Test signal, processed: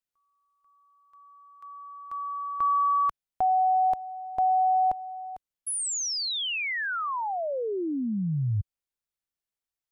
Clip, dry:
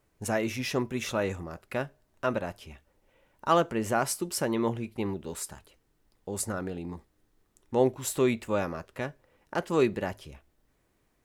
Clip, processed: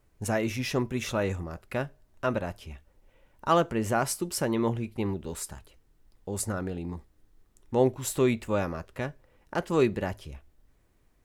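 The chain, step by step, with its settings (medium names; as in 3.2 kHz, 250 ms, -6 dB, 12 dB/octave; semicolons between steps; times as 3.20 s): bass shelf 88 Hz +11.5 dB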